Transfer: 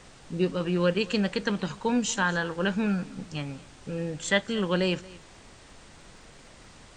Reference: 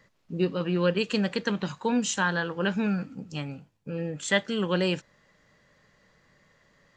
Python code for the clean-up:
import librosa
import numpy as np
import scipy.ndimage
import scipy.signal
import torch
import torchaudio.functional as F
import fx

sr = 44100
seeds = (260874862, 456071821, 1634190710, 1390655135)

y = fx.fix_declick_ar(x, sr, threshold=6.5)
y = fx.noise_reduce(y, sr, print_start_s=5.21, print_end_s=5.71, reduce_db=13.0)
y = fx.fix_echo_inverse(y, sr, delay_ms=231, level_db=-21.5)